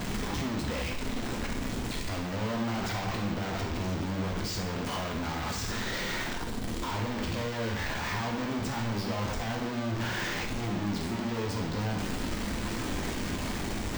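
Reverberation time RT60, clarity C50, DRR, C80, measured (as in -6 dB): 0.70 s, 5.0 dB, 0.5 dB, 8.0 dB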